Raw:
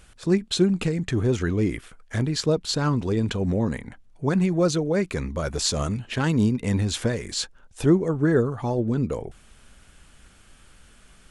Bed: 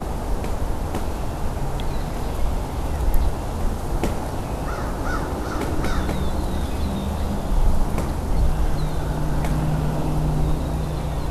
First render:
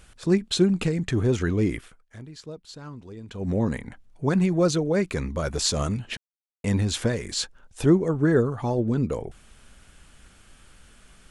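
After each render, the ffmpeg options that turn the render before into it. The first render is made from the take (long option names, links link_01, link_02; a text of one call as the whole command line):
ffmpeg -i in.wav -filter_complex "[0:a]asplit=5[link_01][link_02][link_03][link_04][link_05];[link_01]atrim=end=2.06,asetpts=PTS-STARTPTS,afade=type=out:start_time=1.77:duration=0.29:silence=0.141254[link_06];[link_02]atrim=start=2.06:end=3.29,asetpts=PTS-STARTPTS,volume=-17dB[link_07];[link_03]atrim=start=3.29:end=6.17,asetpts=PTS-STARTPTS,afade=type=in:duration=0.29:silence=0.141254,afade=type=out:start_time=2.876:duration=0.004:curve=hsin[link_08];[link_04]atrim=start=6.17:end=6.64,asetpts=PTS-STARTPTS,volume=0[link_09];[link_05]atrim=start=6.64,asetpts=PTS-STARTPTS,afade=type=in:duration=0.004:curve=hsin[link_10];[link_06][link_07][link_08][link_09][link_10]concat=n=5:v=0:a=1" out.wav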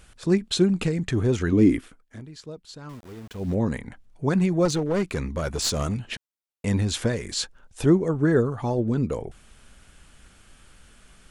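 ffmpeg -i in.wav -filter_complex "[0:a]asettb=1/sr,asplit=3[link_01][link_02][link_03];[link_01]atrim=end=1.524[link_04];[link_02]atrim=start=1.52:end=2.2,asetpts=PTS-STARTPTS,afade=type=in:duration=0.004:curve=qsin,afade=type=out:start_time=0.676:duration=0.004:curve=qsin,equalizer=frequency=270:width=2:gain=12[link_05];[link_03]atrim=start=2.196[link_06];[link_04][link_05]acrossfade=duration=0.004:curve1=hsin:curve2=qsin[link_07];[link_07][link_06]acrossfade=duration=0.004:curve1=qsin:curve2=hsin,asettb=1/sr,asplit=3[link_08][link_09][link_10];[link_08]atrim=end=2.894[link_11];[link_09]atrim=start=2.89:end=3.55,asetpts=PTS-STARTPTS,afade=type=in:duration=0.004:curve=qsin,afade=type=out:start_time=0.656:duration=0.004:curve=qsin,aeval=exprs='val(0)*gte(abs(val(0)),0.00668)':channel_layout=same[link_12];[link_10]atrim=start=3.546[link_13];[link_11][link_12]acrossfade=duration=0.004:curve1=hsin:curve2=qsin[link_14];[link_14][link_13]acrossfade=duration=0.004:curve1=qsin:curve2=hsin,asettb=1/sr,asplit=3[link_15][link_16][link_17];[link_15]atrim=end=4.654[link_18];[link_16]atrim=start=4.65:end=6.03,asetpts=PTS-STARTPTS,afade=type=in:duration=0.004:curve=qsin,afade=type=out:start_time=1.376:duration=0.004:curve=qsin,aeval=exprs='clip(val(0),-1,0.075)':channel_layout=same[link_19];[link_17]atrim=start=6.026[link_20];[link_18][link_19]acrossfade=duration=0.004:curve1=hsin:curve2=qsin[link_21];[link_21][link_20]acrossfade=duration=0.004:curve1=qsin:curve2=hsin" out.wav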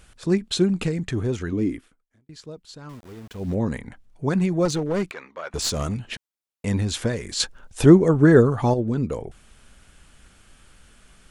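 ffmpeg -i in.wav -filter_complex "[0:a]asettb=1/sr,asplit=3[link_01][link_02][link_03];[link_01]atrim=end=5.114[link_04];[link_02]atrim=start=5.11:end=5.54,asetpts=PTS-STARTPTS,afade=type=in:duration=0.004:curve=qsin,afade=type=out:start_time=0.426:duration=0.004:curve=qsin,highpass=720,lowpass=3100[link_05];[link_03]atrim=start=5.536[link_06];[link_04][link_05]acrossfade=duration=0.004:curve1=hsin:curve2=qsin[link_07];[link_07][link_06]acrossfade=duration=0.004:curve1=qsin:curve2=hsin,asplit=4[link_08][link_09][link_10][link_11];[link_08]atrim=end=2.29,asetpts=PTS-STARTPTS,afade=type=out:start_time=0.9:duration=1.39[link_12];[link_09]atrim=start=2.29:end=7.402,asetpts=PTS-STARTPTS,afade=type=in:duration=0.004:curve=hsin[link_13];[link_10]atrim=start=7.398:end=8.742,asetpts=PTS-STARTPTS,volume=6.5dB[link_14];[link_11]atrim=start=8.738[link_15];[link_12][link_13]concat=n=2:v=0:a=1[link_16];[link_16][link_14]acrossfade=duration=0.004:curve1=hsin:curve2=hsin[link_17];[link_17][link_15]acrossfade=duration=0.004:curve1=hsin:curve2=hsin" out.wav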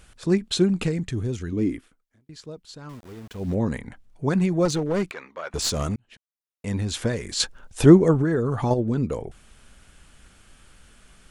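ffmpeg -i in.wav -filter_complex "[0:a]asettb=1/sr,asplit=3[link_01][link_02][link_03];[link_01]atrim=end=1.084[link_04];[link_02]atrim=start=1.08:end=1.57,asetpts=PTS-STARTPTS,afade=type=in:duration=0.004:curve=qsin,afade=type=out:start_time=0.486:duration=0.004:curve=qsin,equalizer=frequency=940:width_type=o:width=2.9:gain=-9[link_05];[link_03]atrim=start=1.566[link_06];[link_04][link_05]acrossfade=duration=0.004:curve1=hsin:curve2=qsin[link_07];[link_07][link_06]acrossfade=duration=0.004:curve1=qsin:curve2=hsin,asettb=1/sr,asplit=3[link_08][link_09][link_10];[link_08]atrim=end=8.214[link_11];[link_09]atrim=start=8.21:end=8.71,asetpts=PTS-STARTPTS,afade=type=in:duration=0.004:curve=qsin,afade=type=out:start_time=0.496:duration=0.004:curve=qsin,acompressor=threshold=-18dB:ratio=12:attack=3.2:release=140:knee=1:detection=peak[link_12];[link_10]atrim=start=8.706[link_13];[link_11][link_12]acrossfade=duration=0.004:curve1=hsin:curve2=qsin[link_14];[link_14][link_13]acrossfade=duration=0.004:curve1=qsin:curve2=hsin,asplit=2[link_15][link_16];[link_15]atrim=end=5.96,asetpts=PTS-STARTPTS,afade=type=out:start_time=5.956:duration=0.004:curve=hsin[link_17];[link_16]atrim=start=5.96,asetpts=PTS-STARTPTS,afade=type=in:duration=1.19[link_18];[link_17][link_18]concat=n=2:v=0:a=1" out.wav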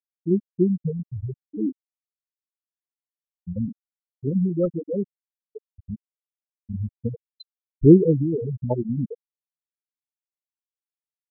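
ffmpeg -i in.wav -af "afftfilt=real='re*gte(hypot(re,im),0.447)':imag='im*gte(hypot(re,im),0.447)':win_size=1024:overlap=0.75,lowpass=2000" out.wav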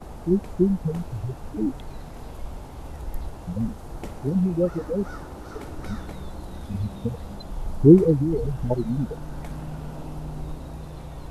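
ffmpeg -i in.wav -i bed.wav -filter_complex "[1:a]volume=-12.5dB[link_01];[0:a][link_01]amix=inputs=2:normalize=0" out.wav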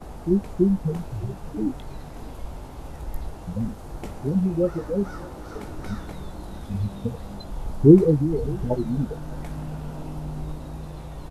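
ffmpeg -i in.wav -filter_complex "[0:a]asplit=2[link_01][link_02];[link_02]adelay=20,volume=-11dB[link_03];[link_01][link_03]amix=inputs=2:normalize=0,aecho=1:1:609:0.0794" out.wav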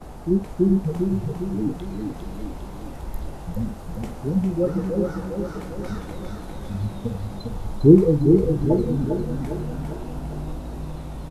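ffmpeg -i in.wav -filter_complex "[0:a]asplit=2[link_01][link_02];[link_02]adelay=47,volume=-12dB[link_03];[link_01][link_03]amix=inputs=2:normalize=0,aecho=1:1:403|806|1209|1612|2015|2418|2821:0.562|0.292|0.152|0.0791|0.0411|0.0214|0.0111" out.wav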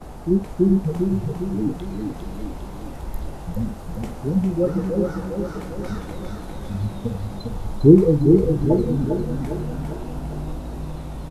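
ffmpeg -i in.wav -af "volume=1.5dB,alimiter=limit=-1dB:level=0:latency=1" out.wav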